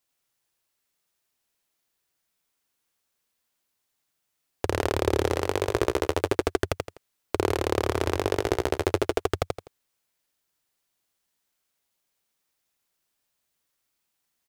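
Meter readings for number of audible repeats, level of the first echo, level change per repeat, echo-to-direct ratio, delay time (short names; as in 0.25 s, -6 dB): 3, -3.5 dB, -10.0 dB, -3.0 dB, 83 ms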